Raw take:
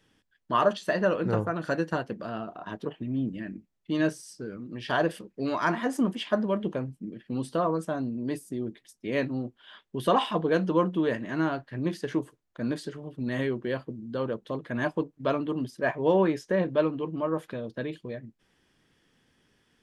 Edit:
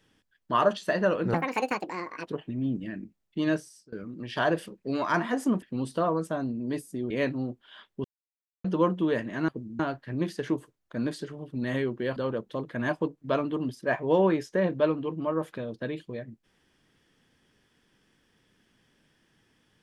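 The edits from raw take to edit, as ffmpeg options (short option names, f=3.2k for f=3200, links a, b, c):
-filter_complex "[0:a]asplit=11[a][b][c][d][e][f][g][h][i][j][k];[a]atrim=end=1.344[l];[b]atrim=start=1.34:end=2.79,asetpts=PTS-STARTPTS,asetrate=69237,aresample=44100,atrim=end_sample=40729,asetpts=PTS-STARTPTS[m];[c]atrim=start=2.786:end=4.45,asetpts=PTS-STARTPTS,afade=t=out:st=1.204:d=0.46:silence=0.0668344[n];[d]atrim=start=4.45:end=6.152,asetpts=PTS-STARTPTS,afade=t=in:d=0.004:c=hsin:silence=0.0668344[o];[e]atrim=start=7.198:end=8.682[p];[f]atrim=start=9.058:end=10,asetpts=PTS-STARTPTS,afade=t=out:st=0.938:d=0.004:c=hsin[q];[g]atrim=start=10:end=10.6,asetpts=PTS-STARTPTS,volume=0[r];[h]atrim=start=10.6:end=11.442,asetpts=PTS-STARTPTS,afade=t=in:d=0.004:c=hsin[s];[i]atrim=start=13.808:end=14.122[t];[j]atrim=start=11.438:end=13.812[u];[k]atrim=start=14.118[v];[l][m]acrossfade=d=0.004:c1=hsin:c2=hsin[w];[n][o]concat=n=2:v=0:a=1[x];[w][x]acrossfade=d=0.004:c1=hsin:c2=hsin[y];[y][p]acrossfade=d=0.004:c1=hsin:c2=hsin[z];[q][r][s]concat=n=3:v=0:a=1[aa];[z][aa]acrossfade=d=0.004:c1=hsin:c2=hsin[ab];[ab][t]acrossfade=d=0.004:c1=hsin:c2=hsin[ac];[ac][u]acrossfade=d=0.004:c1=hsin:c2=hsin[ad];[ad][v]acrossfade=d=0.004:c1=hsin:c2=hsin"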